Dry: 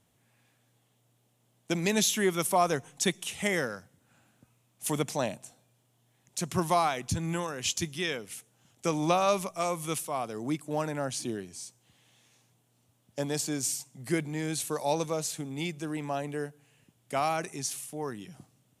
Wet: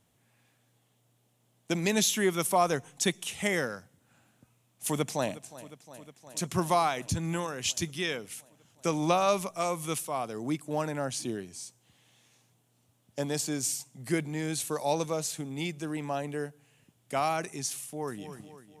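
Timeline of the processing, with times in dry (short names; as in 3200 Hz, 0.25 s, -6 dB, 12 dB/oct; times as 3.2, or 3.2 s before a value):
4.85–5.41 echo throw 0.36 s, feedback 80%, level -17.5 dB
17.82–18.31 echo throw 0.25 s, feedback 50%, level -10.5 dB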